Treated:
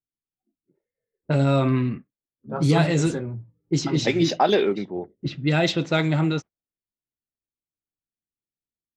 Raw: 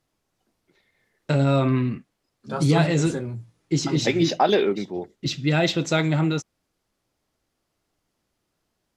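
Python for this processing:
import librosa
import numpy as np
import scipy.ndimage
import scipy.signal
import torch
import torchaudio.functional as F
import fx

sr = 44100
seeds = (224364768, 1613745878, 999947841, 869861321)

y = fx.noise_reduce_blind(x, sr, reduce_db=23)
y = fx.env_lowpass(y, sr, base_hz=370.0, full_db=-16.0)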